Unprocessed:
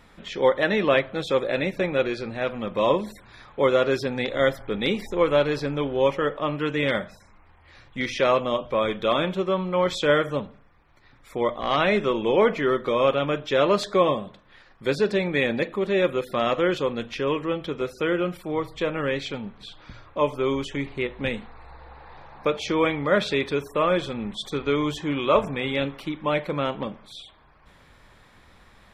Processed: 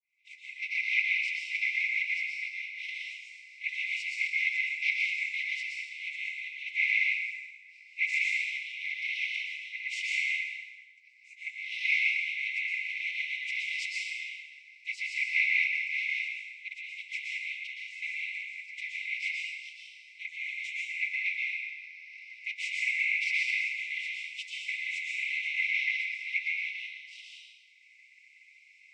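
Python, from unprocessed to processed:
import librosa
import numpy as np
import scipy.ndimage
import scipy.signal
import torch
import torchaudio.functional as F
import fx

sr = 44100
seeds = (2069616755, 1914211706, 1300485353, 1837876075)

y = fx.fade_in_head(x, sr, length_s=0.96)
y = fx.noise_vocoder(y, sr, seeds[0], bands=12)
y = fx.level_steps(y, sr, step_db=22, at=(16.28, 16.93))
y = fx.brickwall_highpass(y, sr, low_hz=2000.0)
y = fx.high_shelf_res(y, sr, hz=2700.0, db=-7.0, q=3.0)
y = fx.rev_plate(y, sr, seeds[1], rt60_s=1.4, hf_ratio=0.8, predelay_ms=105, drr_db=-3.0)
y = fx.band_squash(y, sr, depth_pct=40, at=(21.13, 22.99))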